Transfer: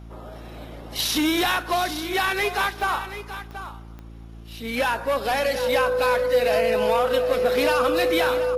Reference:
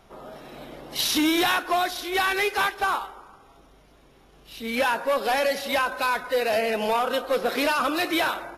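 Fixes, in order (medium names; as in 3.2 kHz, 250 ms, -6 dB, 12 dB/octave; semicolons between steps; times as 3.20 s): de-click; de-hum 56.1 Hz, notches 6; band-stop 500 Hz, Q 30; inverse comb 731 ms -12 dB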